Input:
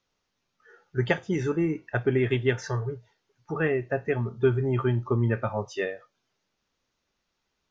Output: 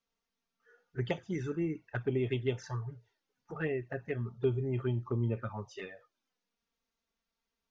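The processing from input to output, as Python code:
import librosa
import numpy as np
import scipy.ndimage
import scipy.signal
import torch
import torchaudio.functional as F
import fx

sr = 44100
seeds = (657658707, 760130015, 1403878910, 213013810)

y = fx.env_flanger(x, sr, rest_ms=4.4, full_db=-20.0)
y = F.gain(torch.from_numpy(y), -7.0).numpy()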